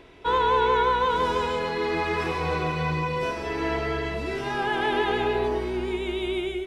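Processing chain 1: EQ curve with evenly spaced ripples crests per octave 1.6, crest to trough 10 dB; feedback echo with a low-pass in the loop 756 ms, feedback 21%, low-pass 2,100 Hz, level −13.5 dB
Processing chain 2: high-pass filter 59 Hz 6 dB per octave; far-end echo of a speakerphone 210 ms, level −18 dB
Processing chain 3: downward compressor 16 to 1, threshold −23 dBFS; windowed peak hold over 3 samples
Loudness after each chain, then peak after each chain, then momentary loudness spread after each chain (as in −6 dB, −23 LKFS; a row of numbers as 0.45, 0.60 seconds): −22.5, −25.5, −28.0 LKFS; −8.5, −11.0, −16.5 dBFS; 10, 7, 3 LU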